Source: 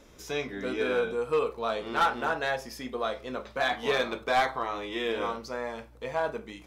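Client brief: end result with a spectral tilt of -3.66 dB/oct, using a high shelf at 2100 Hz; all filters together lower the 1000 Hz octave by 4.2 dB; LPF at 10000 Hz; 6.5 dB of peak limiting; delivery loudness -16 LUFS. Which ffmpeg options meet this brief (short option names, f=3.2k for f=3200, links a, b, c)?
-af "lowpass=10k,equalizer=f=1k:t=o:g=-7,highshelf=f=2.1k:g=3.5,volume=18dB,alimiter=limit=-5dB:level=0:latency=1"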